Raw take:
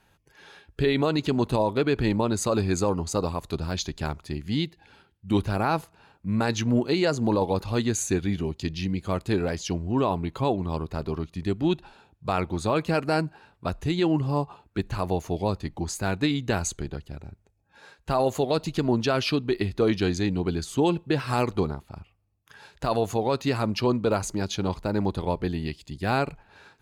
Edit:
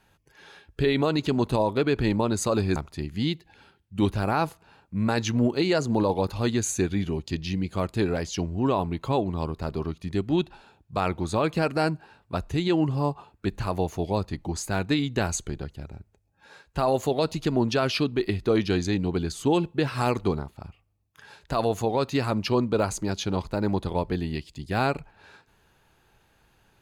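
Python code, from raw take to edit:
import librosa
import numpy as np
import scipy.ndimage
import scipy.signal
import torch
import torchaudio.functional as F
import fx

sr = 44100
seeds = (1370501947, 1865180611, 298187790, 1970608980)

y = fx.edit(x, sr, fx.cut(start_s=2.76, length_s=1.32), tone=tone)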